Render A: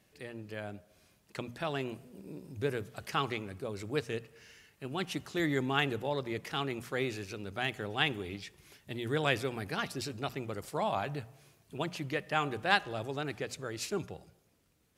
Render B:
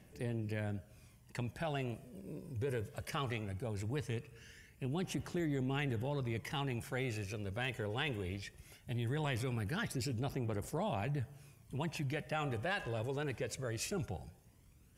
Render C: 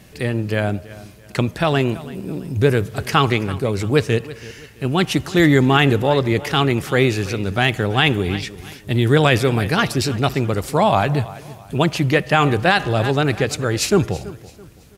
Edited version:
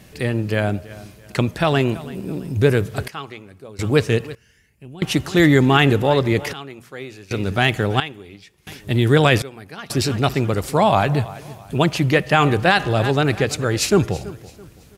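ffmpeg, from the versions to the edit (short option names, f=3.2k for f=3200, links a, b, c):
-filter_complex "[0:a]asplit=4[a][b][c][d];[2:a]asplit=6[e][f][g][h][i][j];[e]atrim=end=3.082[k];[a]atrim=start=3.078:end=3.792[l];[f]atrim=start=3.788:end=4.352[m];[1:a]atrim=start=4.348:end=5.022[n];[g]atrim=start=5.018:end=6.532[o];[b]atrim=start=6.528:end=7.312[p];[h]atrim=start=7.308:end=8.002[q];[c]atrim=start=7.998:end=8.672[r];[i]atrim=start=8.668:end=9.422[s];[d]atrim=start=9.418:end=9.902[t];[j]atrim=start=9.898[u];[k][l]acrossfade=d=0.004:c1=hsin:c2=hsin[v];[v][m]acrossfade=d=0.004:c1=hsin:c2=hsin[w];[w][n]acrossfade=d=0.004:c1=hsin:c2=hsin[x];[x][o]acrossfade=d=0.004:c1=hsin:c2=hsin[y];[y][p]acrossfade=d=0.004:c1=hsin:c2=hsin[z];[z][q]acrossfade=d=0.004:c1=hsin:c2=hsin[aa];[aa][r]acrossfade=d=0.004:c1=hsin:c2=hsin[ab];[ab][s]acrossfade=d=0.004:c1=hsin:c2=hsin[ac];[ac][t]acrossfade=d=0.004:c1=hsin:c2=hsin[ad];[ad][u]acrossfade=d=0.004:c1=hsin:c2=hsin"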